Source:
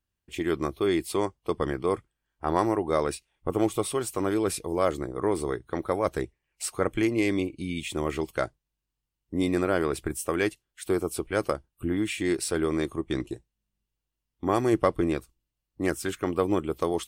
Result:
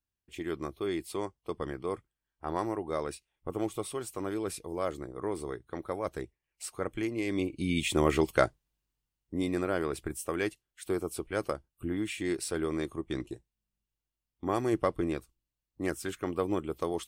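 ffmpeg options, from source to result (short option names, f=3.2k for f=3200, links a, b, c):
-af "volume=3.5dB,afade=t=in:st=7.26:d=0.53:silence=0.266073,afade=t=out:st=8.42:d=1.01:silence=0.354813"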